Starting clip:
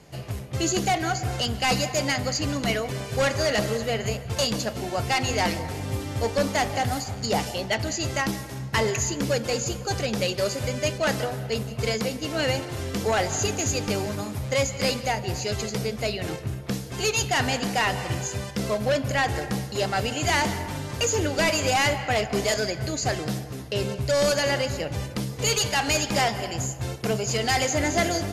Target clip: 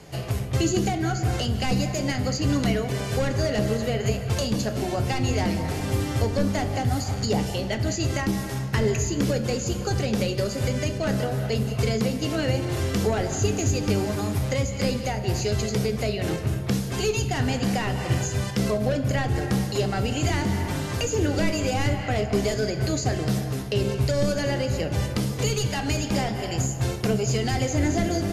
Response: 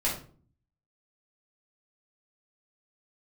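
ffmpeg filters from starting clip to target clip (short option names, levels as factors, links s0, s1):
-filter_complex "[0:a]acrossover=split=380[s0][s1];[s1]acompressor=threshold=0.02:ratio=6[s2];[s0][s2]amix=inputs=2:normalize=0,asplit=2[s3][s4];[1:a]atrim=start_sample=2205,asetrate=29547,aresample=44100[s5];[s4][s5]afir=irnorm=-1:irlink=0,volume=0.126[s6];[s3][s6]amix=inputs=2:normalize=0,volume=1.5"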